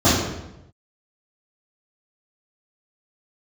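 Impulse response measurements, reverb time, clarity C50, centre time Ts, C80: 0.90 s, 0.0 dB, 71 ms, 3.5 dB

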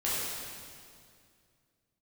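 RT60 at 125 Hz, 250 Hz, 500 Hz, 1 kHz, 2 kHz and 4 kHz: 2.9 s, 2.6 s, 2.4 s, 2.1 s, 2.0 s, 2.0 s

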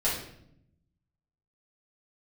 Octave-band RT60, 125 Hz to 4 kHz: 1.4 s, 1.2 s, 0.80 s, 0.65 s, 0.60 s, 0.55 s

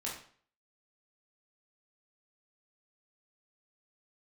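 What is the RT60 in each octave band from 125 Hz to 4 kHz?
0.50 s, 0.50 s, 0.50 s, 0.50 s, 0.45 s, 0.45 s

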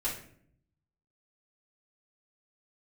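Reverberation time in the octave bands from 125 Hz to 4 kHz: 1.2 s, 0.95 s, 0.70 s, 0.50 s, 0.50 s, 0.40 s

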